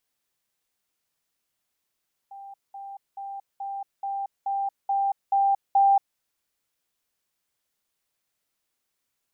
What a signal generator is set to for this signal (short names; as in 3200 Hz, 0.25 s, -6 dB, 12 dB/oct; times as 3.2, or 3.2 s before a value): level ladder 791 Hz -39 dBFS, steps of 3 dB, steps 9, 0.23 s 0.20 s